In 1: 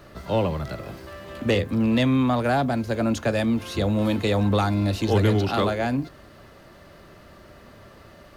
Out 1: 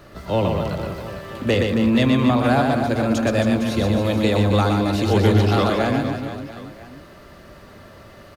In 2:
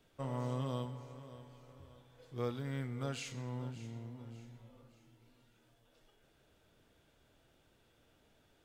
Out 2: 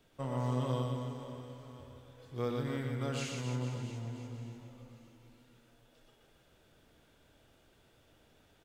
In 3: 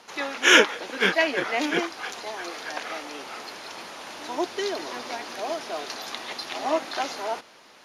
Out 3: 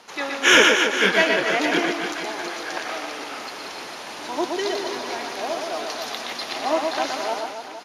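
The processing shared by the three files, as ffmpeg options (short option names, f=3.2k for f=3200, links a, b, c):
-af "aecho=1:1:120|270|457.5|691.9|984.8:0.631|0.398|0.251|0.158|0.1,apsyclip=8dB,volume=-6dB"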